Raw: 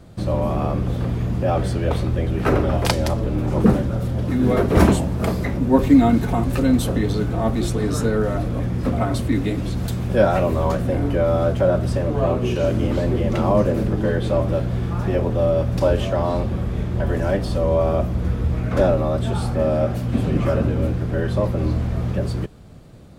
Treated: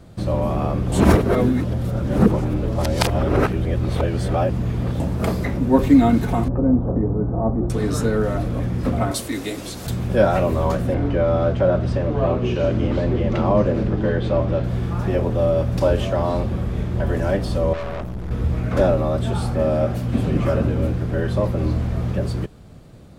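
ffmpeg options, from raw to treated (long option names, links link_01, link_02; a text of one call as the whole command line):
ffmpeg -i in.wav -filter_complex "[0:a]asettb=1/sr,asplit=3[link_01][link_02][link_03];[link_01]atrim=end=6.484[link_04];[link_02]atrim=start=6.48:end=7.7,asetpts=PTS-STARTPTS,afade=type=in:duration=0.004:curve=qsin,afade=type=out:start_time=1.216:duration=0.004:curve=qsin,lowpass=frequency=1000:width=0.5412,lowpass=frequency=1000:width=1.3066[link_05];[link_03]atrim=start=7.696[link_06];[link_04][link_05]acrossfade=duration=0.004:curve1=hsin:curve2=qsin[link_07];[link_07][link_06]acrossfade=duration=0.004:curve1=qsin:curve2=hsin,asettb=1/sr,asplit=3[link_08][link_09][link_10];[link_08]atrim=end=9.114[link_11];[link_09]atrim=start=9.11:end=9.87,asetpts=PTS-STARTPTS,afade=type=in:duration=0.004:curve=qsin,afade=type=out:start_time=0.756:duration=0.004:curve=qsin,bass=frequency=250:gain=-14,treble=frequency=4000:gain=10[link_12];[link_10]atrim=start=9.866[link_13];[link_11][link_12]acrossfade=duration=0.004:curve1=hsin:curve2=qsin[link_14];[link_14][link_13]acrossfade=duration=0.004:curve1=qsin:curve2=hsin,asettb=1/sr,asplit=3[link_15][link_16][link_17];[link_15]atrim=end=10.944[link_18];[link_16]atrim=start=10.94:end=14.64,asetpts=PTS-STARTPTS,afade=type=in:duration=0.004:curve=qsin,afade=type=out:start_time=3.696:duration=0.004:curve=qsin,lowpass=4700[link_19];[link_17]atrim=start=14.636[link_20];[link_18][link_19]acrossfade=duration=0.004:curve1=hsin:curve2=qsin[link_21];[link_21][link_20]acrossfade=duration=0.004:curve1=qsin:curve2=hsin,asettb=1/sr,asplit=3[link_22][link_23][link_24];[link_22]atrim=end=17.734[link_25];[link_23]atrim=start=17.73:end=18.31,asetpts=PTS-STARTPTS,afade=type=in:duration=0.004:curve=qsin,afade=type=out:start_time=0.576:duration=0.004:curve=qsin,aeval=exprs='(tanh(20*val(0)+0.7)-tanh(0.7))/20':channel_layout=same[link_26];[link_24]atrim=start=18.306[link_27];[link_25][link_26]acrossfade=duration=0.004:curve1=hsin:curve2=qsin[link_28];[link_28][link_27]acrossfade=duration=0.004:curve1=qsin:curve2=hsin,asplit=3[link_29][link_30][link_31];[link_29]atrim=end=0.922[link_32];[link_30]atrim=start=0.918:end=5.002,asetpts=PTS-STARTPTS,areverse[link_33];[link_31]atrim=start=4.998[link_34];[link_32][link_33]acrossfade=duration=0.004:curve1=hsin:curve2=hsin[link_35];[link_35][link_34]acrossfade=duration=0.004:curve1=hsin:curve2=hsin" out.wav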